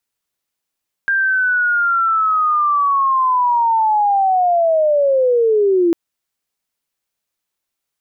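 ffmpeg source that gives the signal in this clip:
ffmpeg -f lavfi -i "aevalsrc='pow(10,(-13+2.5*t/4.85)/20)*sin(2*PI*(1600*t-1270*t*t/(2*4.85)))':duration=4.85:sample_rate=44100" out.wav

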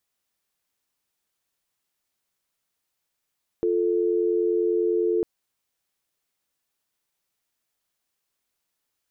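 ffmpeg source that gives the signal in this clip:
ffmpeg -f lavfi -i "aevalsrc='0.075*(sin(2*PI*350*t)+sin(2*PI*440*t))':duration=1.6:sample_rate=44100" out.wav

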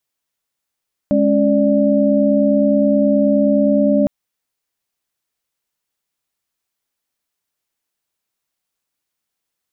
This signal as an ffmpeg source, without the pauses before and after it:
ffmpeg -f lavfi -i "aevalsrc='0.168*(sin(2*PI*207.65*t)+sin(2*PI*277.18*t)+sin(2*PI*587.33*t))':duration=2.96:sample_rate=44100" out.wav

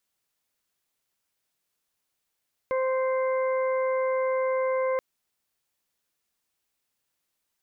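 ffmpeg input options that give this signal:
ffmpeg -f lavfi -i "aevalsrc='0.0668*sin(2*PI*521*t)+0.0266*sin(2*PI*1042*t)+0.0075*sin(2*PI*1563*t)+0.0133*sin(2*PI*2084*t)':duration=2.28:sample_rate=44100" out.wav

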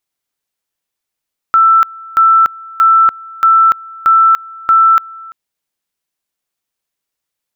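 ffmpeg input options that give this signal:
ffmpeg -f lavfi -i "aevalsrc='pow(10,(-4.5-23.5*gte(mod(t,0.63),0.29))/20)*sin(2*PI*1330*t)':duration=3.78:sample_rate=44100" out.wav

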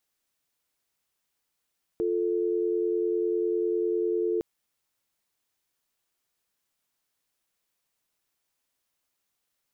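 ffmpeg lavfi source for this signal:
ffmpeg -f lavfi -i "aevalsrc='0.0473*(sin(2*PI*350*t)+sin(2*PI*440*t))':duration=2.41:sample_rate=44100" out.wav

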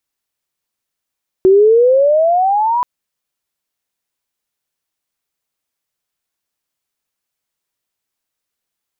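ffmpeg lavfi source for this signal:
ffmpeg -f lavfi -i "aevalsrc='pow(10,(-4.5-7.5*t/1.38)/20)*sin(2*PI*370*1.38/log(1000/370)*(exp(log(1000/370)*t/1.38)-1))':duration=1.38:sample_rate=44100" out.wav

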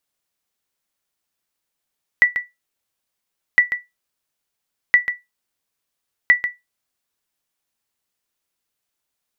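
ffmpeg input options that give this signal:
ffmpeg -f lavfi -i "aevalsrc='0.668*(sin(2*PI*1960*mod(t,1.36))*exp(-6.91*mod(t,1.36)/0.19)+0.316*sin(2*PI*1960*max(mod(t,1.36)-0.14,0))*exp(-6.91*max(mod(t,1.36)-0.14,0)/0.19))':duration=5.44:sample_rate=44100" out.wav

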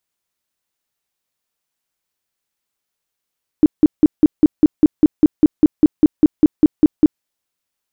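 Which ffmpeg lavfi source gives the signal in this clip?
ffmpeg -f lavfi -i "aevalsrc='0.631*sin(2*PI*305*mod(t,0.2))*lt(mod(t,0.2),9/305)':duration=3.6:sample_rate=44100" out.wav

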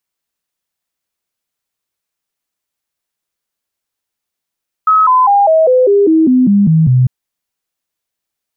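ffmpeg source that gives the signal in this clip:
ffmpeg -f lavfi -i "aevalsrc='0.531*clip(min(mod(t,0.2),0.2-mod(t,0.2))/0.005,0,1)*sin(2*PI*1280*pow(2,-floor(t/0.2)/3)*mod(t,0.2))':duration=2.2:sample_rate=44100" out.wav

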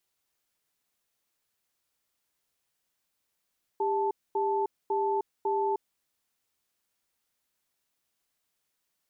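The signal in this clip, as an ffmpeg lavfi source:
ffmpeg -f lavfi -i "aevalsrc='0.0422*(sin(2*PI*398*t)+sin(2*PI*878*t))*clip(min(mod(t,0.55),0.31-mod(t,0.55))/0.005,0,1)':duration=2.07:sample_rate=44100" out.wav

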